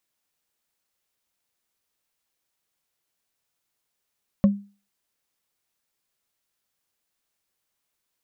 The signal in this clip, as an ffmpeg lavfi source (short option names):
-f lavfi -i "aevalsrc='0.316*pow(10,-3*t/0.34)*sin(2*PI*201*t)+0.1*pow(10,-3*t/0.101)*sin(2*PI*554.2*t)+0.0316*pow(10,-3*t/0.045)*sin(2*PI*1086.2*t)+0.01*pow(10,-3*t/0.025)*sin(2*PI*1795.5*t)+0.00316*pow(10,-3*t/0.015)*sin(2*PI*2681.3*t)':d=0.45:s=44100"